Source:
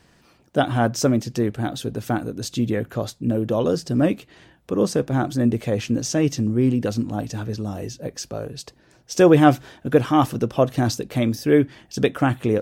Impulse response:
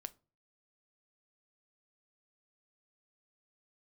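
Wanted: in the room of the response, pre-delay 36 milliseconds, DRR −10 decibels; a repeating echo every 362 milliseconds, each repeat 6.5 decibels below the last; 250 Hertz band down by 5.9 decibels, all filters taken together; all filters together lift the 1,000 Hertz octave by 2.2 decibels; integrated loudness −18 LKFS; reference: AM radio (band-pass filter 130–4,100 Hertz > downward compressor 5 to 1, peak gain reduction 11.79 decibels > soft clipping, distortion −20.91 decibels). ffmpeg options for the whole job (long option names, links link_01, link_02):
-filter_complex "[0:a]equalizer=frequency=250:width_type=o:gain=-7.5,equalizer=frequency=1000:width_type=o:gain=4,aecho=1:1:362|724|1086|1448|1810|2172:0.473|0.222|0.105|0.0491|0.0231|0.0109,asplit=2[link_01][link_02];[1:a]atrim=start_sample=2205,adelay=36[link_03];[link_02][link_03]afir=irnorm=-1:irlink=0,volume=14dB[link_04];[link_01][link_04]amix=inputs=2:normalize=0,highpass=130,lowpass=4100,acompressor=threshold=-12dB:ratio=5,asoftclip=threshold=-6dB,volume=1dB"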